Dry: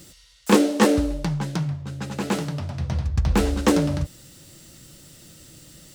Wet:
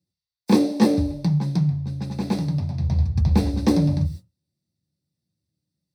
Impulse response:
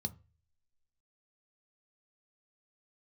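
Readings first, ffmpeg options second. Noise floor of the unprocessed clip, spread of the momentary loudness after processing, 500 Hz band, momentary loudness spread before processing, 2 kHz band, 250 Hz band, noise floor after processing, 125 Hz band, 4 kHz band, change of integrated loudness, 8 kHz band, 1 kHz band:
−52 dBFS, 9 LU, −4.5 dB, 12 LU, −9.5 dB, +1.5 dB, below −85 dBFS, +4.5 dB, −4.0 dB, +1.0 dB, −9.0 dB, −5.0 dB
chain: -filter_complex "[0:a]agate=range=-34dB:threshold=-39dB:ratio=16:detection=peak[link_01];[1:a]atrim=start_sample=2205,atrim=end_sample=6174[link_02];[link_01][link_02]afir=irnorm=-1:irlink=0,volume=-5.5dB"

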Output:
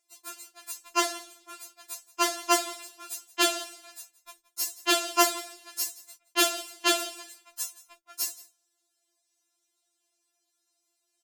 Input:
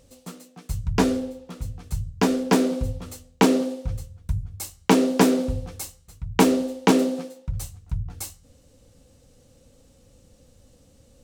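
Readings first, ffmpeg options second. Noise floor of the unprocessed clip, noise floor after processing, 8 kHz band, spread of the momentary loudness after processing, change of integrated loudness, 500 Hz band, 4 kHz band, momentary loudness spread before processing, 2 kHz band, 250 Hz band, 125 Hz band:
−57 dBFS, −78 dBFS, +4.5 dB, 20 LU, −4.0 dB, −9.5 dB, +4.5 dB, 17 LU, +0.5 dB, −16.0 dB, below −40 dB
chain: -af "highpass=570,agate=range=-17dB:threshold=-53dB:ratio=16:detection=peak,highshelf=frequency=5300:gain=4.5,aecho=1:1:172:0.1,afftfilt=real='re*4*eq(mod(b,16),0)':imag='im*4*eq(mod(b,16),0)':win_size=2048:overlap=0.75,volume=4.5dB"

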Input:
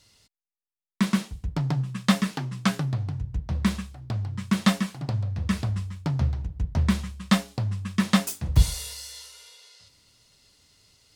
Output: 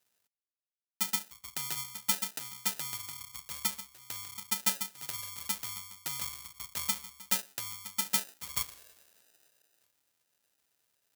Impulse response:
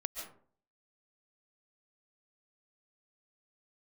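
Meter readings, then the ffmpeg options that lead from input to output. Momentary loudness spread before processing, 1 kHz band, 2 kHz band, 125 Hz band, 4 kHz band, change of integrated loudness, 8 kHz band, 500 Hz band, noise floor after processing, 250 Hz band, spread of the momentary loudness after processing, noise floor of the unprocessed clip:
10 LU, −9.0 dB, −8.0 dB, −29.0 dB, −3.5 dB, −7.0 dB, +3.0 dB, −16.5 dB, below −85 dBFS, −25.0 dB, 10 LU, below −85 dBFS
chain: -af "lowpass=1500,acrusher=samples=40:mix=1:aa=0.000001,aderivative,volume=6dB"

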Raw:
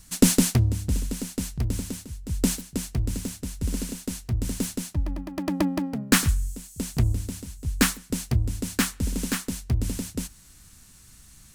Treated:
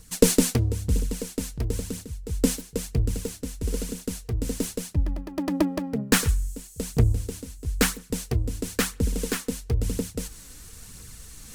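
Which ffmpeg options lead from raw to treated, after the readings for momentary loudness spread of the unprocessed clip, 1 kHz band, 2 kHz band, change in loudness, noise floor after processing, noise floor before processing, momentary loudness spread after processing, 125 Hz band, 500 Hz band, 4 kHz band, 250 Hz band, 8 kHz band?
13 LU, −1.0 dB, −1.0 dB, 0.0 dB, −46 dBFS, −52 dBFS, 13 LU, −0.5 dB, +6.0 dB, −1.0 dB, −1.0 dB, −1.0 dB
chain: -af "equalizer=frequency=460:width_type=o:width=0.28:gain=13,areverse,acompressor=mode=upward:threshold=-34dB:ratio=2.5,areverse,aphaser=in_gain=1:out_gain=1:delay=4.1:decay=0.37:speed=1:type=triangular,volume=-1.5dB"

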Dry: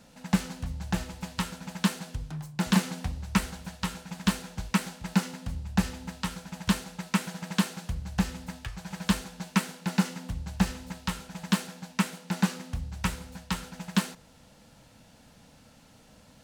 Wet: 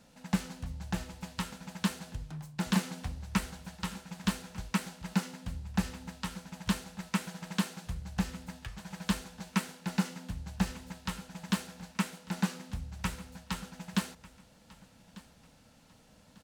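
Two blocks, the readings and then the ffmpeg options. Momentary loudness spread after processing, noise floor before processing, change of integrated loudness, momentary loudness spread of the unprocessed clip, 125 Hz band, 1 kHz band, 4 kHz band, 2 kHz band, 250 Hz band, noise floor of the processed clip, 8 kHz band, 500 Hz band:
9 LU, −56 dBFS, −5.0 dB, 8 LU, −5.0 dB, −5.0 dB, −5.0 dB, −5.0 dB, −5.0 dB, −61 dBFS, −5.0 dB, −5.0 dB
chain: -af "aecho=1:1:1196|2392:0.1|0.031,volume=-5dB"

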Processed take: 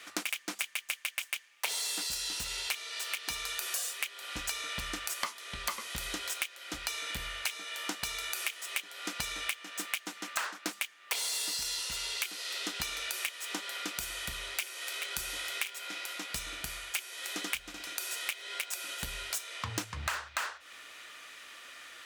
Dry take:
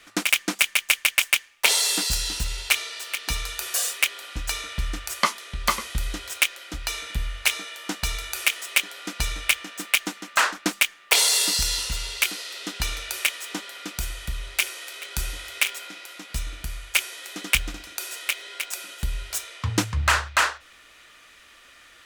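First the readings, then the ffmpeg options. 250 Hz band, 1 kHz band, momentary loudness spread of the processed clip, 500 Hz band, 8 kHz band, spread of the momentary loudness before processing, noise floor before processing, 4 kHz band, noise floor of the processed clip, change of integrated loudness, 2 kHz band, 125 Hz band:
−11.0 dB, −11.0 dB, 5 LU, −10.0 dB, −10.0 dB, 13 LU, −52 dBFS, −9.5 dB, −55 dBFS, −11.0 dB, −11.5 dB, −16.0 dB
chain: -filter_complex "[0:a]asplit=2[link_01][link_02];[link_02]aeval=exprs='(mod(6.31*val(0)+1,2)-1)/6.31':channel_layout=same,volume=-11dB[link_03];[link_01][link_03]amix=inputs=2:normalize=0,highpass=frequency=380:poles=1,acompressor=threshold=-33dB:ratio=6"

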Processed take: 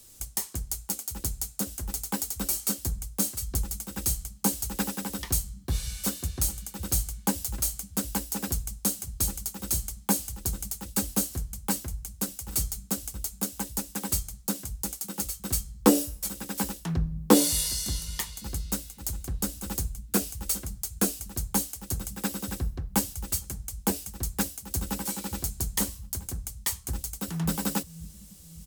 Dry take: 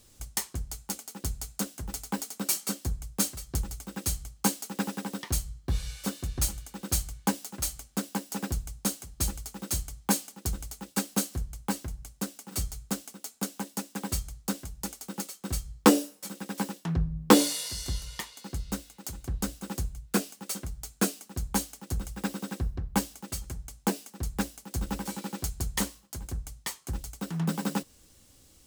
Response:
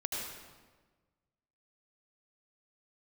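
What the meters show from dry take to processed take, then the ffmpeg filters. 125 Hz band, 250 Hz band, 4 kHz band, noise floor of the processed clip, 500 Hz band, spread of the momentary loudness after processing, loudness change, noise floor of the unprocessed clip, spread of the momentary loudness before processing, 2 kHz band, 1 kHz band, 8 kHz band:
+0.5 dB, 0.0 dB, +0.5 dB, −49 dBFS, 0.0 dB, 7 LU, +2.5 dB, −59 dBFS, 9 LU, −2.0 dB, −1.5 dB, +4.0 dB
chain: -filter_complex "[0:a]equalizer=frequency=15000:width_type=o:width=1.6:gain=11.5,acrossover=split=140|900[link_01][link_02][link_03];[link_01]aecho=1:1:556|1112|1668|2224|2780|3336|3892:0.473|0.27|0.154|0.0876|0.0499|0.0285|0.0162[link_04];[link_03]alimiter=limit=-14.5dB:level=0:latency=1:release=146[link_05];[link_04][link_02][link_05]amix=inputs=3:normalize=0"

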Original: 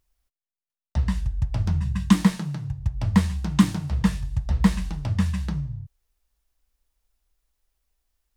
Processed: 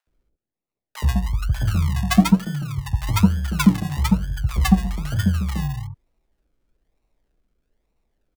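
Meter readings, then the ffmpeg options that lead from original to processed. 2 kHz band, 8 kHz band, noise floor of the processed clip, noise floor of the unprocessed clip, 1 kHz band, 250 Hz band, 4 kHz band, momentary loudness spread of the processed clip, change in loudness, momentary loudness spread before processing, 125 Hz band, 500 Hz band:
+6.0 dB, +6.0 dB, below −85 dBFS, below −85 dBFS, +6.0 dB, +3.0 dB, +5.5 dB, 8 LU, +3.5 dB, 10 LU, +3.5 dB, +3.0 dB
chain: -filter_complex "[0:a]acrossover=split=110|1000[link_01][link_02][link_03];[link_03]acompressor=threshold=-48dB:ratio=6[link_04];[link_01][link_02][link_04]amix=inputs=3:normalize=0,acrusher=samples=38:mix=1:aa=0.000001:lfo=1:lforange=22.8:lforate=1.1,acrossover=split=830[link_05][link_06];[link_05]adelay=70[link_07];[link_07][link_06]amix=inputs=2:normalize=0,volume=3.5dB"

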